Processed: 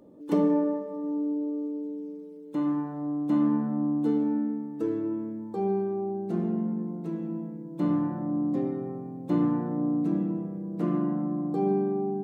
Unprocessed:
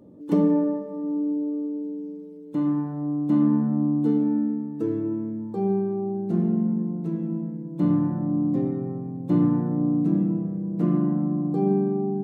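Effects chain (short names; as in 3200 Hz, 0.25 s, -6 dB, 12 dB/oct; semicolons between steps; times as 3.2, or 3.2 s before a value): bell 110 Hz -11.5 dB 2.5 oct; gain +1.5 dB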